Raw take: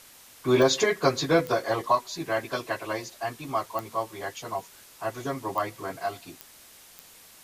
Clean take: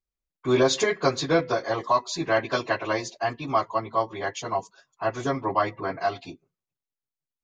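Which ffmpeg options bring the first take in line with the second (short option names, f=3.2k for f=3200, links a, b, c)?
-af "adeclick=t=4,afwtdn=0.0032,asetnsamples=n=441:p=0,asendcmd='1.95 volume volume 5dB',volume=0dB"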